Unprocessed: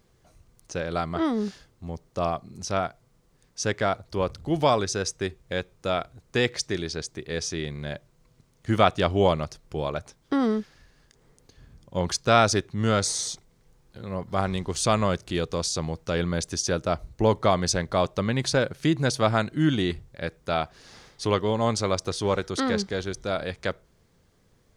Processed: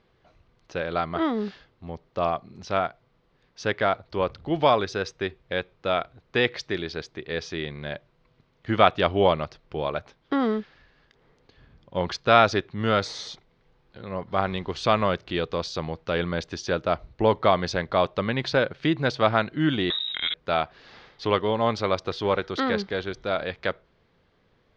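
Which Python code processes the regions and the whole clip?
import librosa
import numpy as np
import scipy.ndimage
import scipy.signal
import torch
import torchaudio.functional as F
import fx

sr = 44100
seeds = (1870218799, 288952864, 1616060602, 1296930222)

y = fx.chain(x, sr, fx.freq_invert(carrier_hz=3800),
    fx.sustainer(db_per_s=27.0), at=(19.9, 20.34))
y = scipy.signal.sosfilt(scipy.signal.butter(4, 3900.0, 'lowpass', fs=sr, output='sos'), y)
y = fx.low_shelf(y, sr, hz=270.0, db=-8.0)
y = y * librosa.db_to_amplitude(3.0)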